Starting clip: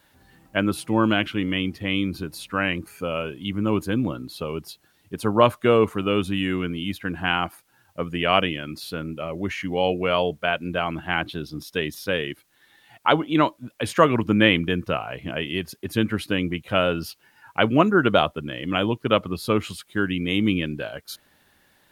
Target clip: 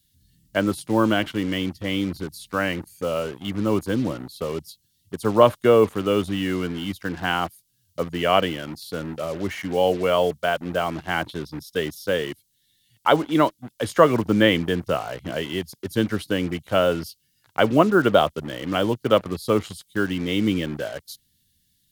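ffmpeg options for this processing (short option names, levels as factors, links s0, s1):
-filter_complex "[0:a]equalizer=f=540:t=o:w=1.1:g=4.5,bandreject=f=2500:w=6.7,acrossover=split=200|3200[s0][s1][s2];[s1]acrusher=bits=5:mix=0:aa=0.5[s3];[s0][s3][s2]amix=inputs=3:normalize=0,volume=0.891"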